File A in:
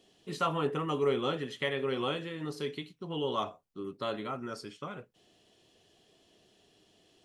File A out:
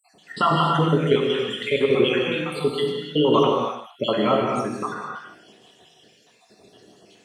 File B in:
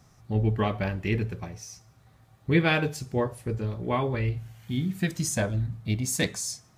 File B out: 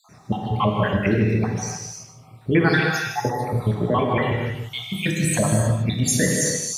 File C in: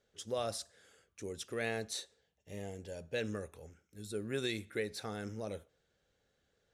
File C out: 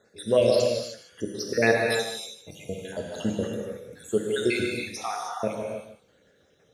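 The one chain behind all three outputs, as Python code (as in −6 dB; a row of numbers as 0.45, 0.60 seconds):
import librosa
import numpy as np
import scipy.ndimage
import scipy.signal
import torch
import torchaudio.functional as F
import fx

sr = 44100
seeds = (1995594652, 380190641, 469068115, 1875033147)

p1 = fx.spec_dropout(x, sr, seeds[0], share_pct=70)
p2 = scipy.signal.sosfilt(scipy.signal.butter(2, 120.0, 'highpass', fs=sr, output='sos'), p1)
p3 = fx.high_shelf(p2, sr, hz=7400.0, db=-6.5)
p4 = fx.over_compress(p3, sr, threshold_db=-34.0, ratio=-1.0)
p5 = p3 + (p4 * librosa.db_to_amplitude(2.5))
p6 = p5 + 10.0 ** (-12.5 / 20.0) * np.pad(p5, (int(152 * sr / 1000.0), 0))[:len(p5)]
p7 = fx.rev_gated(p6, sr, seeds[1], gate_ms=340, shape='flat', drr_db=-0.5)
y = librosa.util.normalize(p7) * 10.0 ** (-6 / 20.0)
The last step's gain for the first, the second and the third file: +7.5, +3.5, +8.0 decibels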